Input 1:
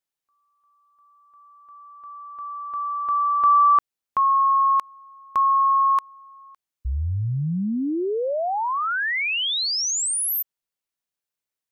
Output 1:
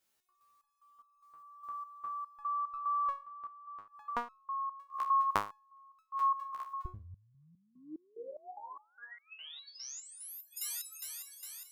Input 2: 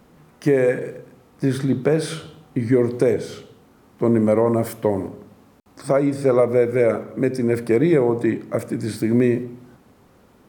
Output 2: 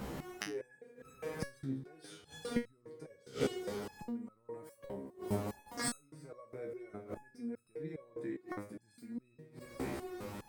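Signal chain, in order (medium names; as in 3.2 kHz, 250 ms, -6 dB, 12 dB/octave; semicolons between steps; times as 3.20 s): peak limiter -12 dBFS; thinning echo 205 ms, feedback 68%, high-pass 230 Hz, level -19.5 dB; inverted gate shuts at -23 dBFS, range -31 dB; resonator arpeggio 4.9 Hz 67–1300 Hz; trim +18 dB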